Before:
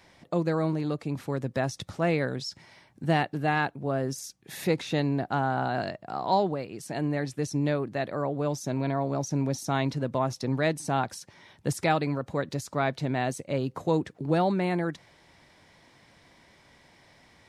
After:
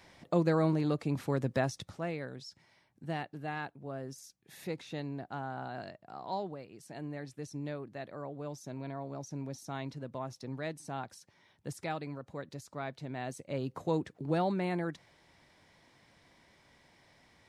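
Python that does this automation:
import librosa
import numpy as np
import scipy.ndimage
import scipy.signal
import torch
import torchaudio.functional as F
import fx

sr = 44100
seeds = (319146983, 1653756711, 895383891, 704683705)

y = fx.gain(x, sr, db=fx.line((1.54, -1.0), (2.14, -12.5), (13.06, -12.5), (13.68, -6.0)))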